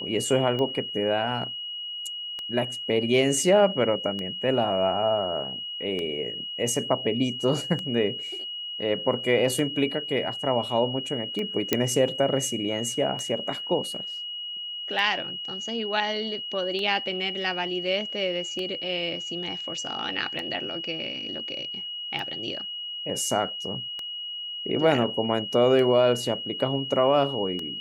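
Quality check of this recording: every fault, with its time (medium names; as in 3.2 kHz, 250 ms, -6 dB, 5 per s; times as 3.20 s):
tick 33 1/3 rpm -19 dBFS
whine 2.9 kHz -32 dBFS
11.73 s: pop -5 dBFS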